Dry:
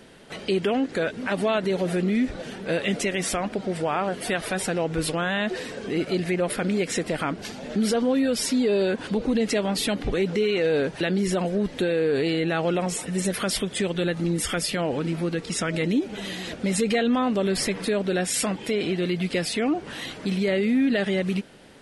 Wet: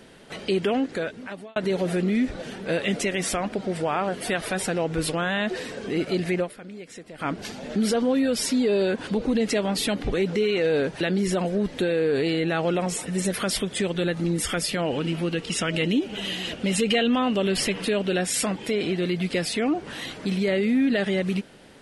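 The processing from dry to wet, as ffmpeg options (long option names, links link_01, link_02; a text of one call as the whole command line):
ffmpeg -i in.wav -filter_complex "[0:a]asettb=1/sr,asplit=3[link_01][link_02][link_03];[link_01]atrim=end=14.864[link_04];[link_02]atrim=start=14.86:end=18.18,asetpts=PTS-STARTPTS,afade=type=in:duration=0.004:curve=qsin,afade=type=out:start_time=3.316:duration=0.004:curve=qsin,equalizer=frequency=2900:width=5.2:gain=11.5[link_05];[link_03]atrim=start=18.176[link_06];[link_04][link_05]acrossfade=duration=0.004:curve1=hsin:curve2=qsin[link_07];[link_07][link_06]acrossfade=duration=0.004:curve1=qsin:curve2=hsin,asplit=4[link_08][link_09][link_10][link_11];[link_08]atrim=end=1.56,asetpts=PTS-STARTPTS,afade=type=out:start_time=0.78:duration=0.78[link_12];[link_09]atrim=start=1.56:end=6.53,asetpts=PTS-STARTPTS,afade=type=in:duration=0.004:curve=hsin,afade=type=out:start_time=4.85:duration=0.12:curve=qua:silence=0.16788[link_13];[link_10]atrim=start=6.53:end=7.14,asetpts=PTS-STARTPTS,volume=-15.5dB[link_14];[link_11]atrim=start=7.14,asetpts=PTS-STARTPTS,afade=type=in:duration=0.12:curve=qua:silence=0.16788[link_15];[link_12][link_13][link_14][link_15]concat=n=4:v=0:a=1" out.wav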